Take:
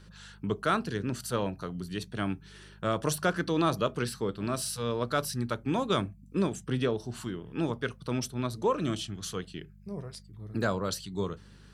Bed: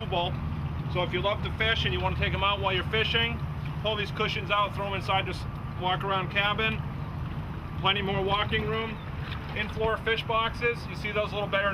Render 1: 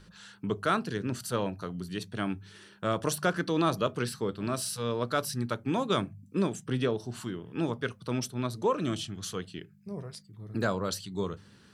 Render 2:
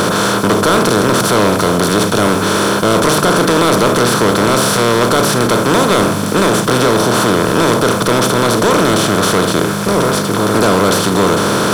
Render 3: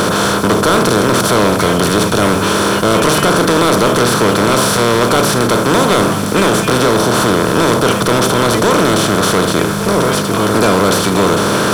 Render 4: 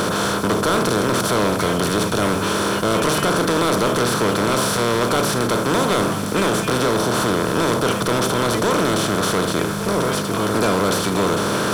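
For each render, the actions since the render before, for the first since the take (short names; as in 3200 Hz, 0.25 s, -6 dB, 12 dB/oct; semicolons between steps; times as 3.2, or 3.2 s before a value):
de-hum 50 Hz, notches 3
per-bin compression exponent 0.2; sample leveller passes 3
add bed +1 dB
gain -7 dB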